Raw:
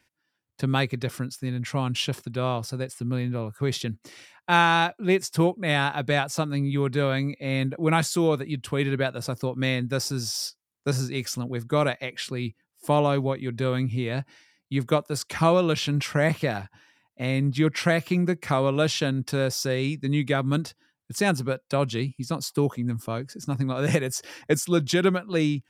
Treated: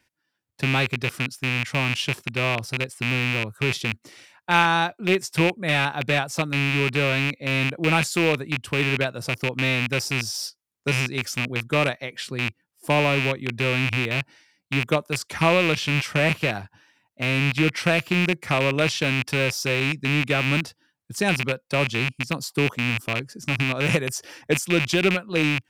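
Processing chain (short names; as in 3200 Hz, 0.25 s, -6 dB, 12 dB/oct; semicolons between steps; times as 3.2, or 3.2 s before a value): rattling part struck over -28 dBFS, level -12 dBFS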